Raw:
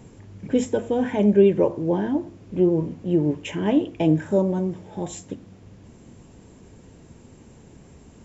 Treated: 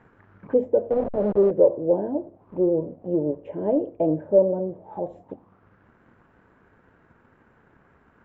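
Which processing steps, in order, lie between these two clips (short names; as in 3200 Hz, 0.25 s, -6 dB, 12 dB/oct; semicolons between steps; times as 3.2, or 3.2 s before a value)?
0.9–1.51 level-crossing sampler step -18 dBFS; low shelf 480 Hz -11 dB; sample leveller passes 1; envelope low-pass 560–1600 Hz down, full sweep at -29 dBFS; gain -3 dB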